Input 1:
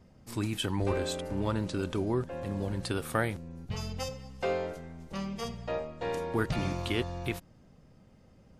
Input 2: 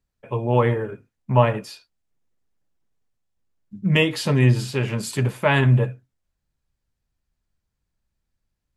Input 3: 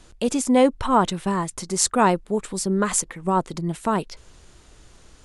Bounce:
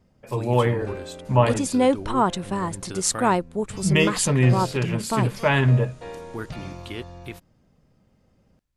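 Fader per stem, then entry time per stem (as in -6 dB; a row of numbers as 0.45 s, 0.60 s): -3.5 dB, -1.5 dB, -2.5 dB; 0.00 s, 0.00 s, 1.25 s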